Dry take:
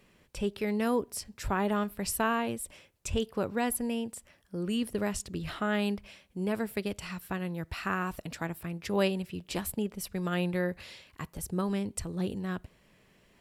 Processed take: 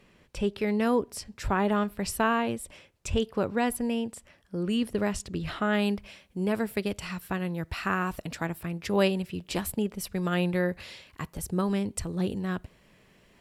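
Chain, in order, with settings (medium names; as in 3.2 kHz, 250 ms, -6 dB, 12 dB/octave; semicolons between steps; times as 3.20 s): treble shelf 9.2 kHz -11 dB, from 5.73 s -3 dB; trim +3.5 dB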